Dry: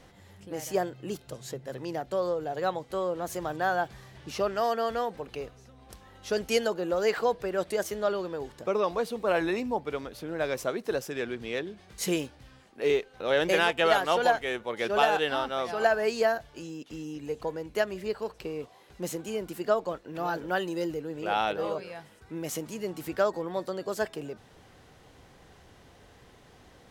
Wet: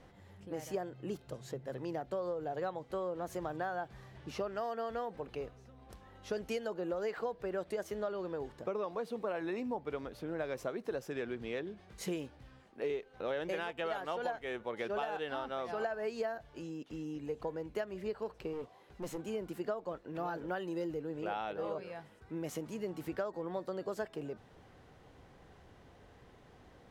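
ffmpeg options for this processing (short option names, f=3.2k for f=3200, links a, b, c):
-filter_complex "[0:a]asettb=1/sr,asplit=3[a][b][c];[a]atrim=end=8.854[d];[b]atrim=start=8.85:end=9.75,asetpts=PTS-STARTPTS,afade=t=in:d=0.004:c=qsin,afade=t=out:st=0.896:d=0.004:c=qsin,highpass=110[e];[c]atrim=start=9.746[f];[d][e]acrossfade=d=0.004:c1=hsin:c2=qsin[g];[g][f]acrossfade=d=0.004:c1=qsin:c2=hsin,asettb=1/sr,asplit=3[h][i][j];[h]atrim=end=18.534[k];[i]atrim=start=18.53:end=19.18,asetpts=PTS-STARTPTS,afade=t=in:d=0.004:c=qsin,afade=t=out:st=0.646:d=0.004:c=qsin,aeval=exprs='clip(val(0),-1,0.0168)':c=same[l];[j]atrim=start=19.176[m];[k][l]acrossfade=d=0.004:c1=hsin:c2=qsin[n];[n][m]acrossfade=d=0.004:c1=qsin:c2=hsin,acompressor=threshold=-30dB:ratio=6,highshelf=f=3k:g=-10,volume=-3dB"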